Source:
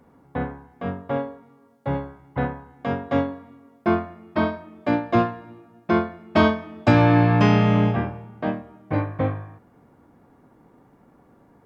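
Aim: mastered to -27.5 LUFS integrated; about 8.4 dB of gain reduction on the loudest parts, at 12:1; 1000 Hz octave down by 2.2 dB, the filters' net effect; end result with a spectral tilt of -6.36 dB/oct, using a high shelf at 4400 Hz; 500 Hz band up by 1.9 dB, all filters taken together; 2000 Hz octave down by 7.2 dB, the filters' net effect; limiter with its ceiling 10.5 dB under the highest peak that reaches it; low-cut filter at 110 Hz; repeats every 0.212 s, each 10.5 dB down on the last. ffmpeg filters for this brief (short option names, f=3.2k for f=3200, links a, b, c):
-af "highpass=110,equalizer=f=500:t=o:g=4,equalizer=f=1k:t=o:g=-3,equalizer=f=2k:t=o:g=-8,highshelf=f=4.4k:g=-4.5,acompressor=threshold=-20dB:ratio=12,alimiter=limit=-21dB:level=0:latency=1,aecho=1:1:212|424|636:0.299|0.0896|0.0269,volume=5.5dB"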